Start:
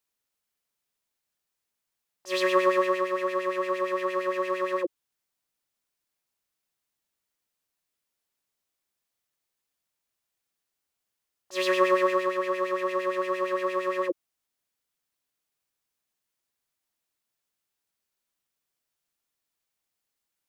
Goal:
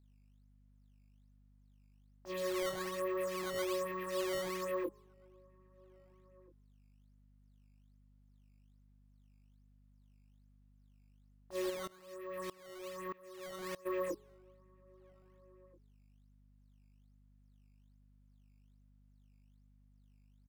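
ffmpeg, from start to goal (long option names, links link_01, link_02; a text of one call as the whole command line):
ffmpeg -i in.wav -filter_complex "[0:a]lowpass=frequency=1100:poles=1,equalizer=frequency=200:width_type=o:width=0.77:gain=12,bandreject=frequency=210.8:width_type=h:width=4,bandreject=frequency=421.6:width_type=h:width=4,bandreject=frequency=632.4:width_type=h:width=4,bandreject=frequency=843.2:width_type=h:width=4,bandreject=frequency=1054:width_type=h:width=4,acompressor=threshold=-26dB:ratio=6,alimiter=level_in=4.5dB:limit=-24dB:level=0:latency=1:release=25,volume=-4.5dB,aeval=exprs='0.0355*(abs(mod(val(0)/0.0355+3,4)-2)-1)':channel_layout=same,flanger=delay=22.5:depth=3.6:speed=0.88,aeval=exprs='val(0)+0.000501*(sin(2*PI*50*n/s)+sin(2*PI*2*50*n/s)/2+sin(2*PI*3*50*n/s)/3+sin(2*PI*4*50*n/s)/4+sin(2*PI*5*50*n/s)/5)':channel_layout=same,acrusher=samples=10:mix=1:aa=0.000001:lfo=1:lforange=16:lforate=1.2,asplit=2[link_01][link_02];[link_02]adelay=1633,volume=-26dB,highshelf=frequency=4000:gain=-36.7[link_03];[link_01][link_03]amix=inputs=2:normalize=0,asplit=3[link_04][link_05][link_06];[link_04]afade=type=out:start_time=11.69:duration=0.02[link_07];[link_05]aeval=exprs='val(0)*pow(10,-23*if(lt(mod(-1.6*n/s,1),2*abs(-1.6)/1000),1-mod(-1.6*n/s,1)/(2*abs(-1.6)/1000),(mod(-1.6*n/s,1)-2*abs(-1.6)/1000)/(1-2*abs(-1.6)/1000))/20)':channel_layout=same,afade=type=in:start_time=11.69:duration=0.02,afade=type=out:start_time=13.85:duration=0.02[link_08];[link_06]afade=type=in:start_time=13.85:duration=0.02[link_09];[link_07][link_08][link_09]amix=inputs=3:normalize=0,volume=2dB" out.wav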